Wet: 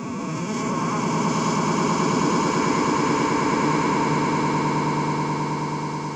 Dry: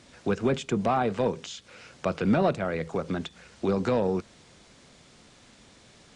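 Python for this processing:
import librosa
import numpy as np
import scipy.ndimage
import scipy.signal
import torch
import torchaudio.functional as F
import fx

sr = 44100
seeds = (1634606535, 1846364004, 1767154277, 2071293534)

p1 = fx.spec_swells(x, sr, rise_s=2.75)
p2 = scipy.signal.sosfilt(scipy.signal.butter(2, 88.0, 'highpass', fs=sr, output='sos'), p1)
p3 = fx.peak_eq(p2, sr, hz=7600.0, db=3.0, octaves=1.6)
p4 = fx.fixed_phaser(p3, sr, hz=2400.0, stages=8)
p5 = fx.over_compress(p4, sr, threshold_db=-30.0, ratio=-1.0)
p6 = p4 + (p5 * librosa.db_to_amplitude(-2.0))
p7 = fx.notch_comb(p6, sr, f0_hz=380.0)
p8 = fx.pitch_keep_formants(p7, sr, semitones=8.0)
p9 = p8 + fx.echo_swell(p8, sr, ms=107, loudest=8, wet_db=-4, dry=0)
y = p9 * librosa.db_to_amplitude(-4.0)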